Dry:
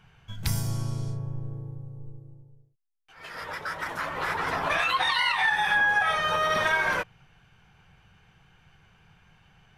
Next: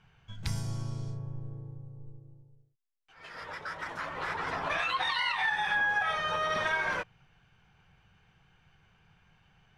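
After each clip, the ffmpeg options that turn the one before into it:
ffmpeg -i in.wav -af "lowpass=7400,volume=-5.5dB" out.wav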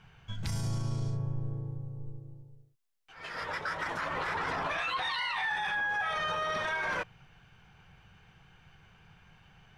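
ffmpeg -i in.wav -af "alimiter=level_in=6.5dB:limit=-24dB:level=0:latency=1:release=28,volume=-6.5dB,volume=5.5dB" out.wav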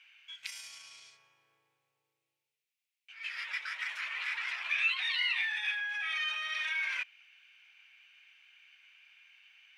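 ffmpeg -i in.wav -af "highpass=frequency=2400:width_type=q:width=4,volume=-3dB" out.wav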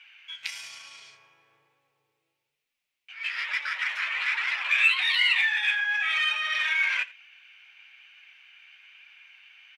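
ffmpeg -i in.wav -filter_complex "[0:a]asplit=2[link_01][link_02];[link_02]adynamicsmooth=sensitivity=6:basefreq=5400,volume=1dB[link_03];[link_01][link_03]amix=inputs=2:normalize=0,flanger=delay=3.4:depth=8.7:regen=51:speed=1.1:shape=sinusoidal,aecho=1:1:86:0.0891,volume=6.5dB" out.wav

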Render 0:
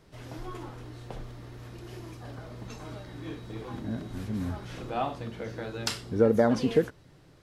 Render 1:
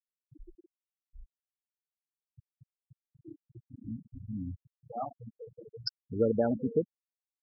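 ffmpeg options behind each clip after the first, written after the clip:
ffmpeg -i in.wav -af "afftfilt=real='re*gte(hypot(re,im),0.112)':imag='im*gte(hypot(re,im),0.112)':win_size=1024:overlap=0.75,aexciter=amount=9.4:drive=4.3:freq=5300,volume=-5dB" out.wav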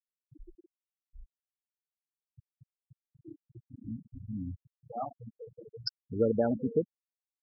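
ffmpeg -i in.wav -af anull out.wav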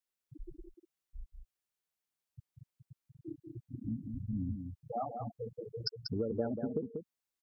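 ffmpeg -i in.wav -af "acompressor=threshold=-37dB:ratio=6,aecho=1:1:190:0.501,volume=4dB" out.wav

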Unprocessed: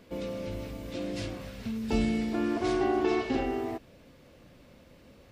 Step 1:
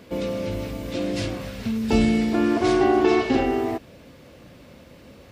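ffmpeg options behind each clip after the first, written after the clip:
ffmpeg -i in.wav -af "highpass=47,volume=8.5dB" out.wav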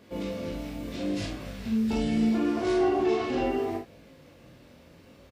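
ffmpeg -i in.wav -filter_complex "[0:a]alimiter=limit=-14dB:level=0:latency=1:release=11,flanger=delay=18.5:depth=5.8:speed=0.74,asplit=2[link_01][link_02];[link_02]aecho=0:1:41|54:0.596|0.376[link_03];[link_01][link_03]amix=inputs=2:normalize=0,volume=-4.5dB" out.wav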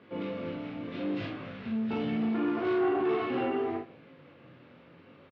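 ffmpeg -i in.wav -filter_complex "[0:a]asoftclip=type=tanh:threshold=-21.5dB,highpass=frequency=110:width=0.5412,highpass=frequency=110:width=1.3066,equalizer=frequency=210:width_type=q:width=4:gain=-4,equalizer=frequency=630:width_type=q:width=4:gain=-4,equalizer=frequency=1300:width_type=q:width=4:gain=5,lowpass=frequency=3200:width=0.5412,lowpass=frequency=3200:width=1.3066,asplit=2[link_01][link_02];[link_02]adelay=134.1,volume=-22dB,highshelf=frequency=4000:gain=-3.02[link_03];[link_01][link_03]amix=inputs=2:normalize=0" out.wav

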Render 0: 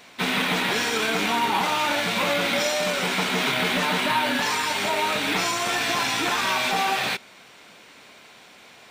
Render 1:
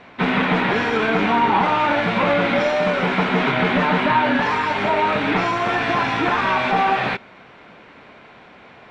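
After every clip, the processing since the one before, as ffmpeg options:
ffmpeg -i in.wav -af "lowpass=1900,lowshelf=frequency=130:gain=7,volume=6.5dB" out.wav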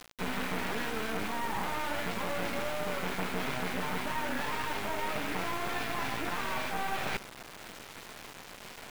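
ffmpeg -i in.wav -af "areverse,acompressor=threshold=-28dB:ratio=6,areverse,acrusher=bits=4:dc=4:mix=0:aa=0.000001" out.wav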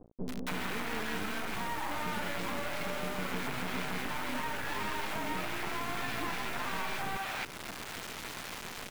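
ffmpeg -i in.wav -filter_complex "[0:a]acompressor=threshold=-35dB:ratio=6,acrossover=split=560[link_01][link_02];[link_02]adelay=280[link_03];[link_01][link_03]amix=inputs=2:normalize=0,volume=5.5dB" out.wav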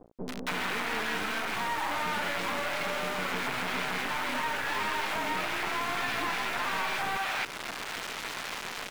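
ffmpeg -i in.wav -filter_complex "[0:a]asplit=2[link_01][link_02];[link_02]highpass=frequency=720:poles=1,volume=10dB,asoftclip=type=tanh:threshold=-21dB[link_03];[link_01][link_03]amix=inputs=2:normalize=0,lowpass=frequency=5800:poles=1,volume=-6dB,volume=2dB" out.wav

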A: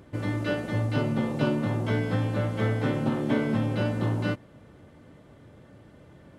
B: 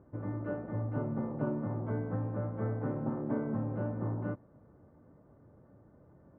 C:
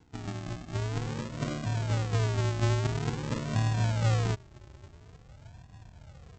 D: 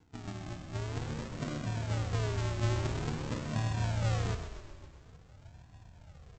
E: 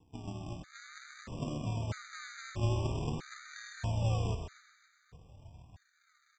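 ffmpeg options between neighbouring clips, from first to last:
ffmpeg -i in.wav -af "lowpass=frequency=1300:width=0.5412,lowpass=frequency=1300:width=1.3066,volume=-8dB" out.wav
ffmpeg -i in.wav -af "asubboost=boost=11.5:cutoff=95,aresample=16000,acrusher=samples=26:mix=1:aa=0.000001:lfo=1:lforange=15.6:lforate=0.48,aresample=44100" out.wav
ffmpeg -i in.wav -filter_complex "[0:a]flanger=delay=9.7:depth=5.6:regen=72:speed=1.5:shape=triangular,asplit=2[link_01][link_02];[link_02]asplit=7[link_03][link_04][link_05][link_06][link_07][link_08][link_09];[link_03]adelay=129,afreqshift=-30,volume=-9dB[link_10];[link_04]adelay=258,afreqshift=-60,volume=-13.4dB[link_11];[link_05]adelay=387,afreqshift=-90,volume=-17.9dB[link_12];[link_06]adelay=516,afreqshift=-120,volume=-22.3dB[link_13];[link_07]adelay=645,afreqshift=-150,volume=-26.7dB[link_14];[link_08]adelay=774,afreqshift=-180,volume=-31.2dB[link_15];[link_09]adelay=903,afreqshift=-210,volume=-35.6dB[link_16];[link_10][link_11][link_12][link_13][link_14][link_15][link_16]amix=inputs=7:normalize=0[link_17];[link_01][link_17]amix=inputs=2:normalize=0" out.wav
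ffmpeg -i in.wav -af "afftfilt=real='re*gt(sin(2*PI*0.78*pts/sr)*(1-2*mod(floor(b*sr/1024/1200),2)),0)':imag='im*gt(sin(2*PI*0.78*pts/sr)*(1-2*mod(floor(b*sr/1024/1200),2)),0)':win_size=1024:overlap=0.75" out.wav

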